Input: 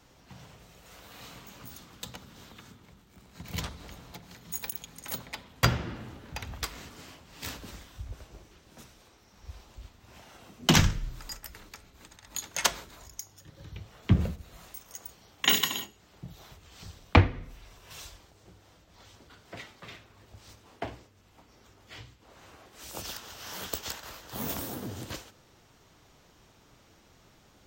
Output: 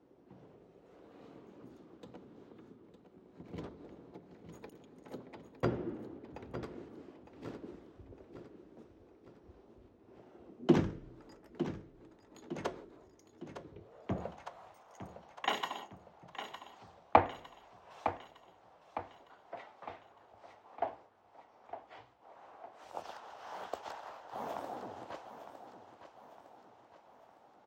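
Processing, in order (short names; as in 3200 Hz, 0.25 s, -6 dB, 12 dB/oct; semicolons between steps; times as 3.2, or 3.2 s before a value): feedback echo 0.908 s, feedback 48%, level -10.5 dB; band-pass sweep 360 Hz -> 770 Hz, 13.71–14.24; gain +4.5 dB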